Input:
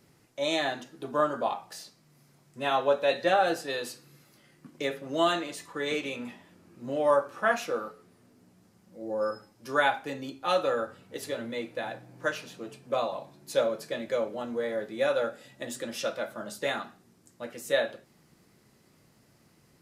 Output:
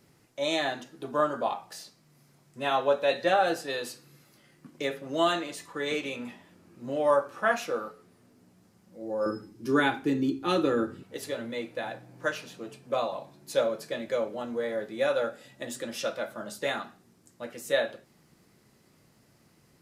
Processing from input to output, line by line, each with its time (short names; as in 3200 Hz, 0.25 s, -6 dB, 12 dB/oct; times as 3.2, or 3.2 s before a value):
9.26–11.03 resonant low shelf 460 Hz +8.5 dB, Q 3